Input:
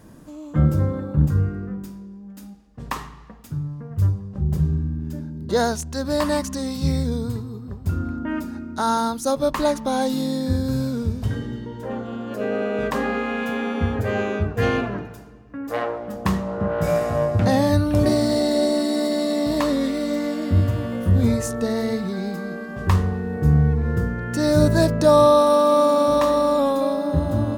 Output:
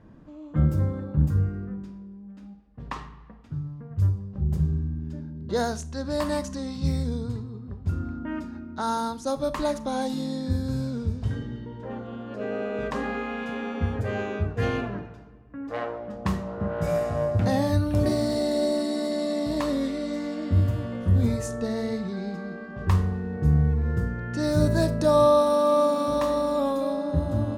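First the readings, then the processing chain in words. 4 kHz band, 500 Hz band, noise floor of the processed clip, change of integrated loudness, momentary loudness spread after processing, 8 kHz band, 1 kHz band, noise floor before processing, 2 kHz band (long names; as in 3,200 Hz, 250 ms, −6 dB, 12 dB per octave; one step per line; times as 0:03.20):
−6.5 dB, −5.0 dB, −44 dBFS, −5.0 dB, 14 LU, −7.5 dB, −6.0 dB, −40 dBFS, −6.5 dB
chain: low-pass that shuts in the quiet parts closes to 2,600 Hz, open at −16 dBFS
low-shelf EQ 160 Hz +4.5 dB
four-comb reverb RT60 0.35 s, combs from 29 ms, DRR 15 dB
level −6.5 dB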